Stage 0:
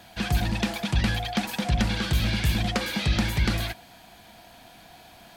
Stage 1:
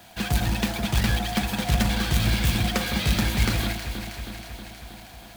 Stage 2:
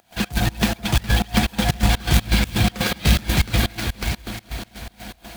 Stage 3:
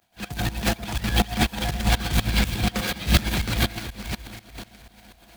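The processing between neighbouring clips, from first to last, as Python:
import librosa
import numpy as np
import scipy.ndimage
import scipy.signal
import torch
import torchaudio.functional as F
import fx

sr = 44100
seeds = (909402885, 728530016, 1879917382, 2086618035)

y1 = fx.quant_companded(x, sr, bits=4)
y1 = fx.echo_alternate(y1, sr, ms=159, hz=1500.0, feedback_pct=81, wet_db=-7)
y2 = fx.reverse_delay(y1, sr, ms=469, wet_db=-7.5)
y2 = fx.volume_shaper(y2, sr, bpm=123, per_beat=2, depth_db=-24, release_ms=119.0, shape='slow start')
y2 = F.gain(torch.from_numpy(y2), 6.0).numpy()
y3 = fx.transient(y2, sr, attack_db=-10, sustain_db=11)
y3 = fx.upward_expand(y3, sr, threshold_db=-34.0, expansion=1.5)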